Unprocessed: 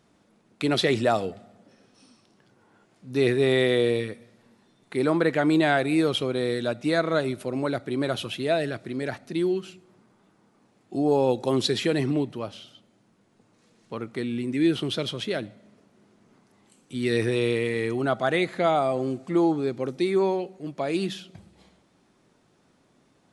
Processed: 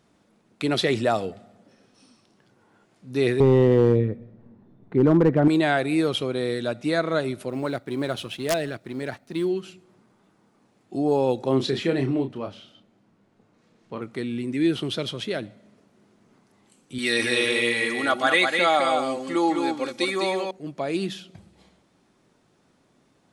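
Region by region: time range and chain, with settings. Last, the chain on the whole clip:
0:03.40–0:05.48: low-pass filter 1,300 Hz 6 dB per octave + spectral tilt −4 dB per octave + hard clipping −10.5 dBFS
0:07.49–0:09.45: mu-law and A-law mismatch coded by A + wrap-around overflow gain 14.5 dB
0:11.43–0:14.02: low-pass filter 2,800 Hz 6 dB per octave + double-tracking delay 30 ms −6.5 dB
0:16.98–0:20.51: tilt shelving filter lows −8 dB, about 640 Hz + comb filter 3.6 ms, depth 64% + single-tap delay 205 ms −4.5 dB
whole clip: no processing

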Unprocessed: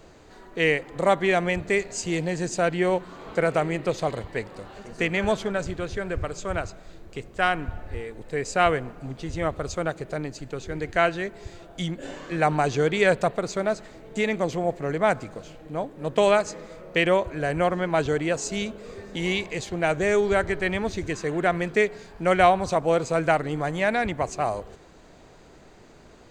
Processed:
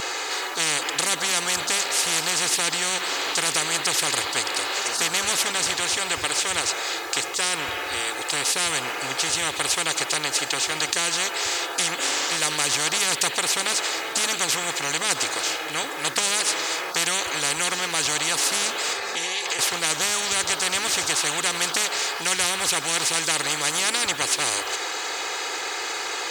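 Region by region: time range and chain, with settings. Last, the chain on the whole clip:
0:18.93–0:19.59: notch comb filter 310 Hz + downward compressor 12 to 1, threshold −37 dBFS + multiband upward and downward expander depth 40%
whole clip: high-pass filter 1,100 Hz 12 dB per octave; comb filter 2.4 ms, depth 78%; every bin compressed towards the loudest bin 10 to 1; level +7 dB

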